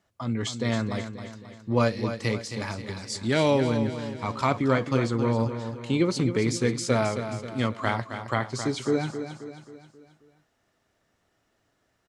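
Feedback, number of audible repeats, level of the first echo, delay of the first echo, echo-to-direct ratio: 48%, 5, -9.5 dB, 267 ms, -8.5 dB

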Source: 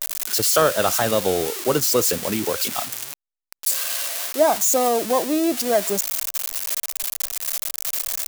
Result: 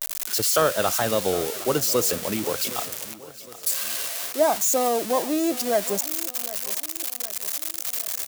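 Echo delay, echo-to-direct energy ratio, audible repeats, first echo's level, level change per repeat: 762 ms, -16.5 dB, 3, -17.5 dB, -6.0 dB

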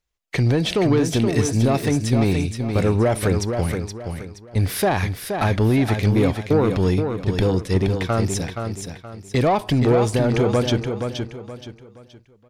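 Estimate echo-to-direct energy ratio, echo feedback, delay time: -6.0 dB, 33%, 473 ms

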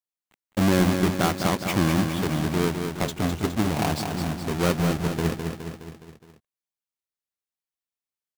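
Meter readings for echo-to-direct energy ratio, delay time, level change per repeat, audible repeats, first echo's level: -4.5 dB, 208 ms, -5.0 dB, 5, -6.0 dB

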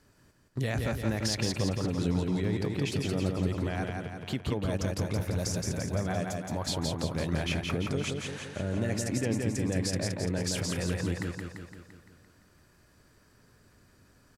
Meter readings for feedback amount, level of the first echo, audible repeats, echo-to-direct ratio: 57%, -3.5 dB, 7, -2.0 dB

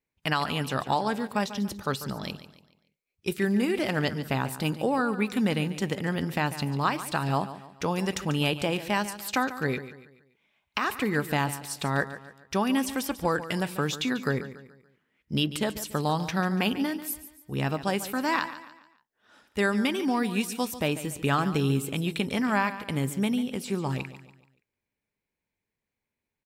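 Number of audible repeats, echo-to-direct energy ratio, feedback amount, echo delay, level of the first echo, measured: 3, -13.0 dB, 40%, 143 ms, -13.5 dB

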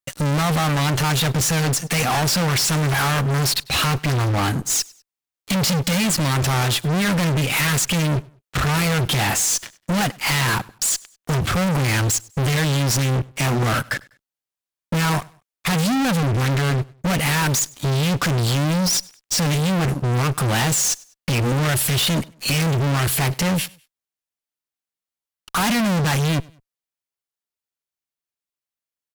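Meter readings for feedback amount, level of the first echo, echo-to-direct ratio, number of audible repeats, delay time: 34%, -24.0 dB, -23.5 dB, 2, 99 ms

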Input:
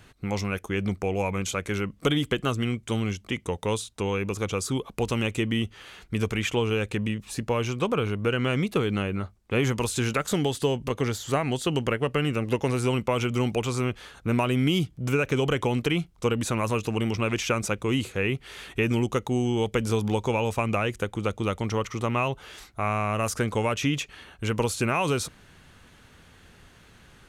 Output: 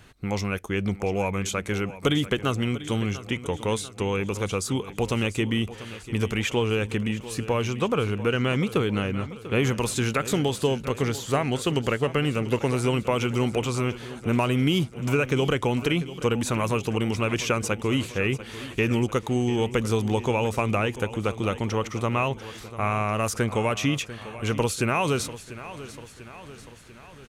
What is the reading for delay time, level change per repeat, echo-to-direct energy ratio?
693 ms, -5.0 dB, -13.5 dB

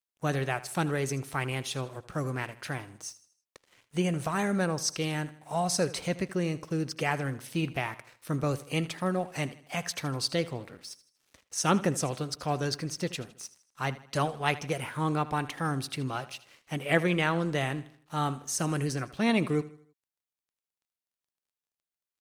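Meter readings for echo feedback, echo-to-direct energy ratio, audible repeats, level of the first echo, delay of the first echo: 43%, -16.0 dB, 3, -17.0 dB, 79 ms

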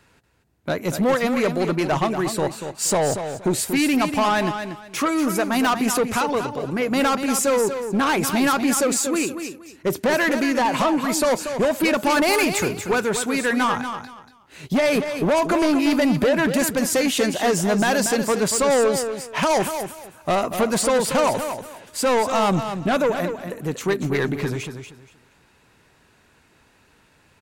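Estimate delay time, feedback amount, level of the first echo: 236 ms, 23%, -8.5 dB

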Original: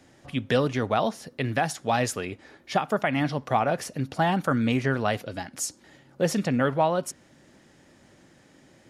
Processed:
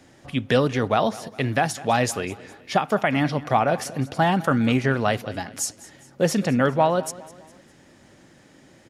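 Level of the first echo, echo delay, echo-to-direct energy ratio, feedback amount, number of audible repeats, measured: -19.0 dB, 204 ms, -18.0 dB, 44%, 3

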